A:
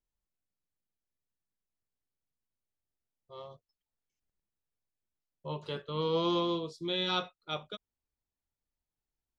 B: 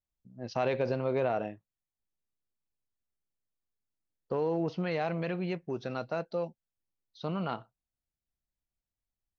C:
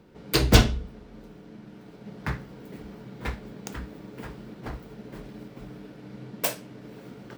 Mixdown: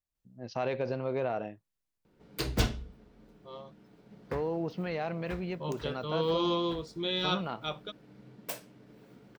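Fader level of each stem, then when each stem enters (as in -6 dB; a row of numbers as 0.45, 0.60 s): +0.5, -2.5, -11.5 dB; 0.15, 0.00, 2.05 s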